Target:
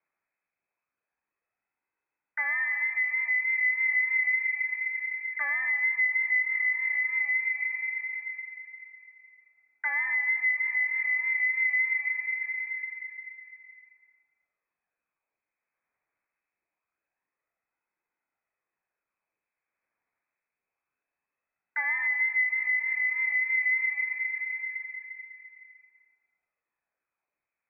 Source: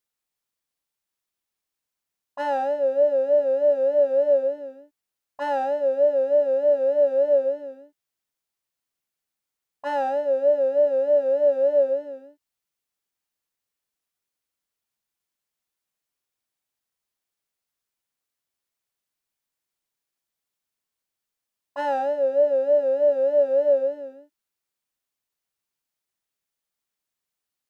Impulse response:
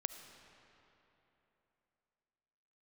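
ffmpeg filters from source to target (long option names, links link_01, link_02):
-filter_complex "[0:a]aphaser=in_gain=1:out_gain=1:delay=1.8:decay=0.38:speed=0.25:type=sinusoidal[link_01];[1:a]atrim=start_sample=2205,asetrate=48510,aresample=44100[link_02];[link_01][link_02]afir=irnorm=-1:irlink=0,lowpass=frequency=2200:width_type=q:width=0.5098,lowpass=frequency=2200:width_type=q:width=0.6013,lowpass=frequency=2200:width_type=q:width=0.9,lowpass=frequency=2200:width_type=q:width=2.563,afreqshift=-2600,acompressor=threshold=-36dB:ratio=3,volume=6.5dB"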